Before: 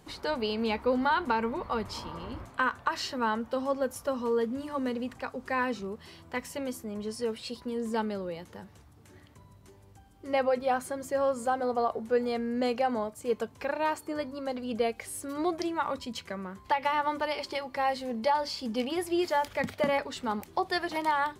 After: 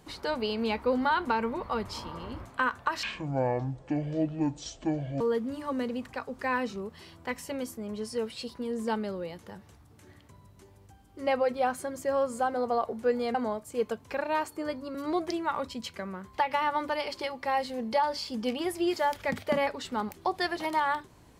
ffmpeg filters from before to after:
-filter_complex "[0:a]asplit=5[a][b][c][d][e];[a]atrim=end=3.034[f];[b]atrim=start=3.03:end=4.27,asetpts=PTS-STARTPTS,asetrate=25137,aresample=44100[g];[c]atrim=start=4.266:end=12.412[h];[d]atrim=start=12.848:end=14.452[i];[e]atrim=start=15.258[j];[f][g]acrossfade=d=0.004:c1=hsin:c2=hsin[k];[k][h]acrossfade=d=0.004:c1=hsin:c2=hsin[l];[l][i]acrossfade=d=0.004:c1=hsin:c2=hsin[m];[m][j]acrossfade=d=0.004:c1=hsin:c2=hsin"

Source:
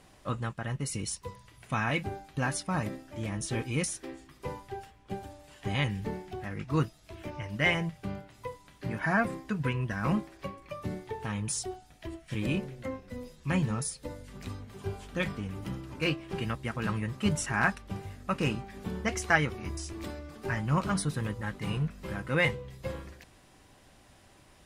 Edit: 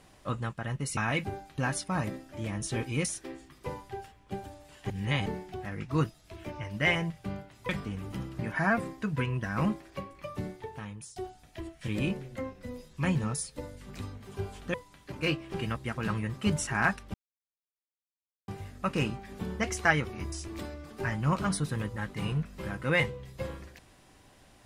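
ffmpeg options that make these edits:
-filter_complex "[0:a]asplit=10[a][b][c][d][e][f][g][h][i][j];[a]atrim=end=0.972[k];[b]atrim=start=1.758:end=5.692[l];[c]atrim=start=5.688:end=6.052,asetpts=PTS-STARTPTS,areverse[m];[d]atrim=start=6.048:end=8.482[n];[e]atrim=start=15.208:end=15.912[o];[f]atrim=start=8.858:end=11.63,asetpts=PTS-STARTPTS,afade=t=out:st=1.992:d=0.78:silence=0.0841395[p];[g]atrim=start=11.63:end=15.212,asetpts=PTS-STARTPTS,afade=t=in:d=0.004:c=hsin:silence=0.0841395[q];[h]atrim=start=8.478:end=8.862[r];[i]atrim=start=15.908:end=17.93,asetpts=PTS-STARTPTS,afade=t=out:st=2.018:d=0.004:c=hsin,apad=pad_dur=1.34[s];[j]atrim=start=17.93,asetpts=PTS-STARTPTS,afade=t=in:d=0.004:c=hsin[t];[k][l]acrossfade=d=0.004:c1=hsin:c2=hsin[u];[u][m]acrossfade=d=0.004:c1=hsin:c2=hsin[v];[v][n]acrossfade=d=0.004:c1=hsin:c2=hsin[w];[w][o]acrossfade=d=0.004:c1=hsin:c2=hsin[x];[p][q]concat=n=2:v=0:a=1[y];[x][y]acrossfade=d=0.004:c1=hsin:c2=hsin[z];[z][r]acrossfade=d=0.004:c1=hsin:c2=hsin[aa];[s][t]concat=n=2:v=0:a=1[ab];[aa][ab]acrossfade=d=0.004:c1=hsin:c2=hsin"

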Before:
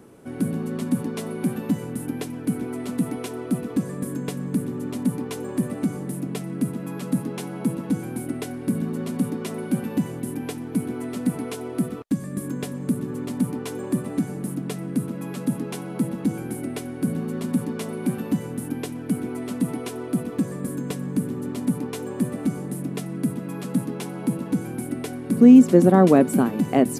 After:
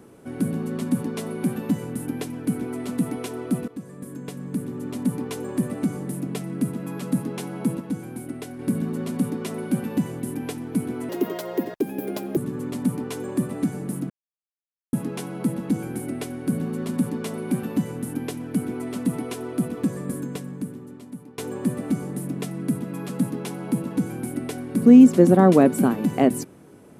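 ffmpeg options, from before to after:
-filter_complex "[0:a]asplit=9[a][b][c][d][e][f][g][h][i];[a]atrim=end=3.68,asetpts=PTS-STARTPTS,afade=t=out:st=3.676:d=0.004:c=hsin:silence=0.199526[j];[b]atrim=start=3.68:end=7.802,asetpts=PTS-STARTPTS,afade=t=in:d=1.54:silence=0.199526[k];[c]atrim=start=7.798:end=8.592,asetpts=PTS-STARTPTS,volume=-4.5dB[l];[d]atrim=start=8.588:end=11.094[m];[e]atrim=start=11.09:end=12.92,asetpts=PTS-STARTPTS,asetrate=63063,aresample=44100[n];[f]atrim=start=12.916:end=14.65,asetpts=PTS-STARTPTS,afade=t=out:st=1.73:d=0.004:c=hsin[o];[g]atrim=start=14.65:end=15.48,asetpts=PTS-STARTPTS,volume=0[p];[h]atrim=start=15.48:end=21.93,asetpts=PTS-STARTPTS,afade=t=in:d=0.004:c=hsin,afade=t=out:st=5.18:d=1.27:c=qua:silence=0.158489[q];[i]atrim=start=21.93,asetpts=PTS-STARTPTS,afade=t=in:d=0.004:c=hsin:silence=0.158489[r];[j][k]concat=n=2:v=0:a=1[s];[s][l]acrossfade=d=0.004:c1=hsin:c2=hsin[t];[t][m]acrossfade=d=0.004:c1=hsin:c2=hsin[u];[u][n]acrossfade=d=0.004:c1=hsin:c2=hsin[v];[o][p][q][r]concat=n=4:v=0:a=1[w];[v][w]acrossfade=d=0.004:c1=hsin:c2=hsin"

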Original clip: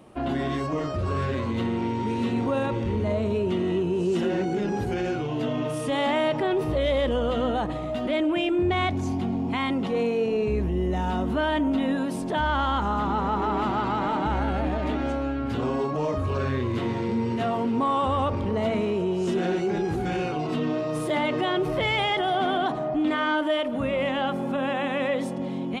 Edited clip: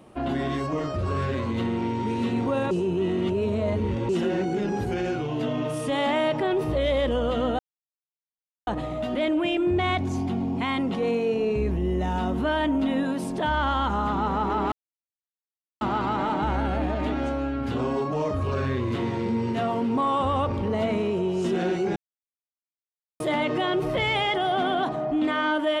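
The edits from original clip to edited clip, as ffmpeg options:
-filter_complex "[0:a]asplit=7[a][b][c][d][e][f][g];[a]atrim=end=2.712[h];[b]atrim=start=2.708:end=4.092,asetpts=PTS-STARTPTS,areverse[i];[c]atrim=start=4.088:end=7.59,asetpts=PTS-STARTPTS,afade=t=out:st=3.498:d=0.004:c=hsin,apad=pad_dur=1.08[j];[d]atrim=start=7.59:end=13.64,asetpts=PTS-STARTPTS,afade=t=in:d=0.004:c=hsin,afade=t=out:st=6.046:d=0.004:c=hsin,apad=pad_dur=1.09[k];[e]atrim=start=13.64:end=19.79,asetpts=PTS-STARTPTS,afade=t=in:d=0.004:c=hsin,afade=t=out:st=6.146:d=0.004:c=hsin[l];[f]atrim=start=19.79:end=21.03,asetpts=PTS-STARTPTS,volume=0[m];[g]atrim=start=21.03,asetpts=PTS-STARTPTS,afade=t=in:d=0.004:c=hsin[n];[h][i]acrossfade=d=0.004:c1=hsin:c2=hsin[o];[j][k][l][m][n]concat=n=5:v=0:a=1[p];[o][p]acrossfade=d=0.004:c1=hsin:c2=hsin"

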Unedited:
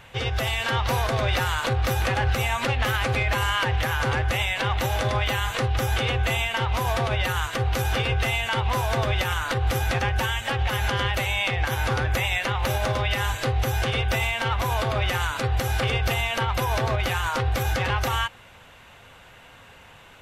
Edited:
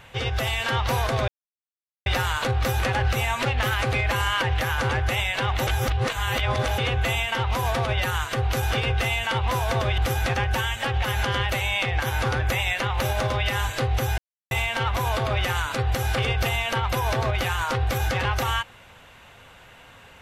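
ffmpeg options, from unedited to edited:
-filter_complex "[0:a]asplit=7[a][b][c][d][e][f][g];[a]atrim=end=1.28,asetpts=PTS-STARTPTS,afade=t=out:st=1.276:d=0.004:c=hsin,apad=pad_dur=0.78[h];[b]atrim=start=1.28:end=4.892,asetpts=PTS-STARTPTS,afade=t=in:d=0.004:c=hsin[i];[c]atrim=start=4.888:end=6.002,asetpts=PTS-STARTPTS,areverse[j];[d]atrim=start=5.998:end=9.202[k];[e]atrim=start=9.628:end=13.83,asetpts=PTS-STARTPTS,afade=t=out:st=4.198:d=0.004:c=hsin[l];[f]atrim=start=13.83:end=14.16,asetpts=PTS-STARTPTS,volume=0[m];[g]atrim=start=14.16,asetpts=PTS-STARTPTS,afade=t=in:d=0.004:c=hsin[n];[h][i]concat=n=2:v=0:a=1[o];[o][j]acrossfade=d=0.004:c1=hsin:c2=hsin[p];[p][k]acrossfade=d=0.004:c1=hsin:c2=hsin[q];[l][m][n]concat=n=3:v=0:a=1[r];[q][r]acrossfade=d=0.004:c1=hsin:c2=hsin"

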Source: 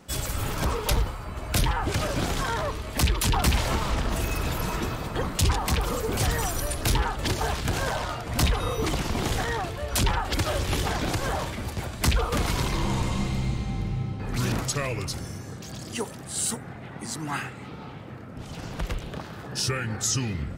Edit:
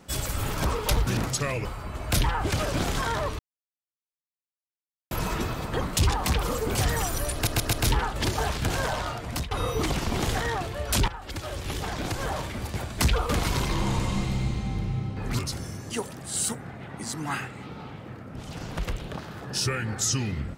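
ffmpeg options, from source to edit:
-filter_complex "[0:a]asplit=12[a][b][c][d][e][f][g][h][i][j][k][l];[a]atrim=end=1.072[m];[b]atrim=start=14.418:end=15.002[n];[c]atrim=start=1.068:end=2.81,asetpts=PTS-STARTPTS,afade=t=out:st=1.738:d=0.004:c=hsin[o];[d]atrim=start=2.81:end=4.53,asetpts=PTS-STARTPTS,volume=0[p];[e]atrim=start=4.53:end=6.892,asetpts=PTS-STARTPTS,afade=t=in:d=0.004:c=hsin[q];[f]atrim=start=6.758:end=6.892[r];[g]atrim=start=6.758:end=6.892[s];[h]atrim=start=6.758:end=8.54,asetpts=PTS-STARTPTS,afade=t=out:st=1.442:d=0.34:silence=0.0891251[t];[i]atrim=start=8.54:end=10.11,asetpts=PTS-STARTPTS,afade=t=in:d=0.004:c=hsin:silence=0.0891251,afade=t=out:st=1.566:d=0.004:c=hsin:silence=0.223872[u];[j]atrim=start=10.11:end=14.422,asetpts=PTS-STARTPTS,afade=t=in:d=1.67:silence=0.223872[v];[k]atrim=start=14.998:end=15.512[w];[l]atrim=start=15.918[x];[m][n]acrossfade=d=0.004:c1=hsin:c2=hsin[y];[o][p][q]concat=n=3:v=0:a=1[z];[y][z]acrossfade=d=0.004:c1=hsin:c2=hsin[aa];[aa][r]acrossfade=d=0.004:c1=hsin:c2=hsin[ab];[ab][s]acrossfade=d=0.004:c1=hsin:c2=hsin[ac];[t][u][v]concat=n=3:v=0:a=1[ad];[ac][ad]acrossfade=d=0.004:c1=hsin:c2=hsin[ae];[ae][w]acrossfade=d=0.004:c1=hsin:c2=hsin[af];[af][x]acrossfade=d=0.004:c1=hsin:c2=hsin"

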